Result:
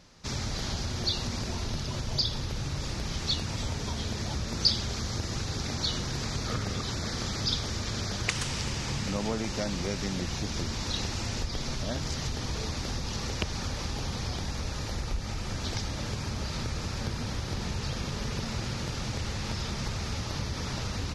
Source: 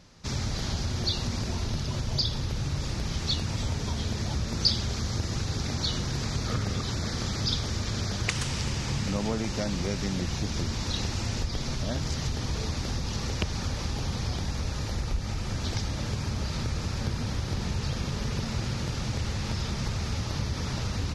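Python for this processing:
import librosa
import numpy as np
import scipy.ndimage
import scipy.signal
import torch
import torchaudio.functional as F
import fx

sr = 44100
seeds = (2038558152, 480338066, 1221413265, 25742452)

y = fx.peak_eq(x, sr, hz=94.0, db=-4.0, octaves=2.8)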